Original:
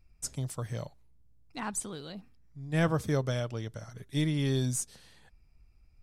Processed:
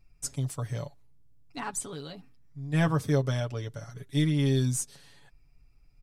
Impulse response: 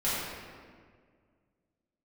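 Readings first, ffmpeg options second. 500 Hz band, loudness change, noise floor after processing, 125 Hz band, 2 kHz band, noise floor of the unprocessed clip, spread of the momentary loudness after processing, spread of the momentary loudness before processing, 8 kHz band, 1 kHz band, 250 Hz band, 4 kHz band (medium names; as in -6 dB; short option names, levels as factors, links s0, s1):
+1.5 dB, +3.0 dB, -60 dBFS, +4.0 dB, +1.0 dB, -61 dBFS, 18 LU, 17 LU, +1.5 dB, +2.0 dB, +3.0 dB, +1.5 dB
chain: -af "aecho=1:1:7.1:0.65"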